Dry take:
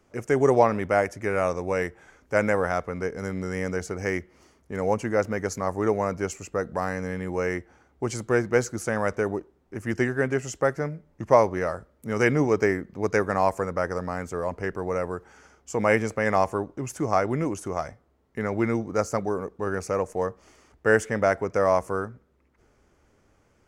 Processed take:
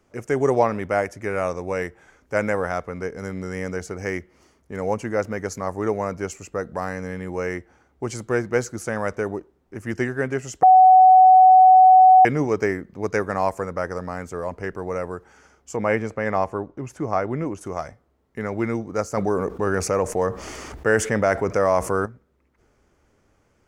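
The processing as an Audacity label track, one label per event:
10.630000	12.250000	bleep 748 Hz -7.5 dBFS
15.760000	17.610000	LPF 2600 Hz 6 dB/oct
19.170000	22.060000	fast leveller amount 50%

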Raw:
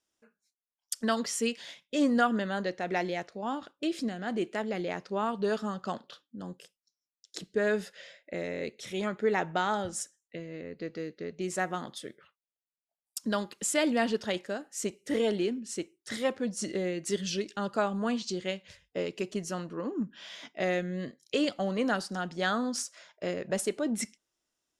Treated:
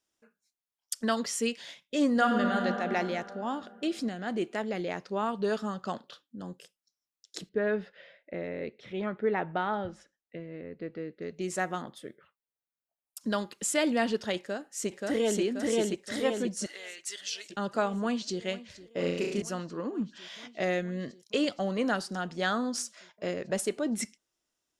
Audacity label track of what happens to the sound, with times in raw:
2.100000	2.600000	reverb throw, RT60 3 s, DRR 1.5 dB
7.490000	11.220000	air absorption 340 m
11.820000	13.210000	bell 5600 Hz -10.5 dB 2 oct
14.380000	15.410000	echo throw 0.53 s, feedback 55%, level -0.5 dB
16.660000	17.500000	HPF 1400 Hz
18.010000	18.410000	echo throw 0.47 s, feedback 85%, level -17.5 dB
18.970000	19.420000	flutter echo walls apart 5.9 m, dies away in 0.8 s

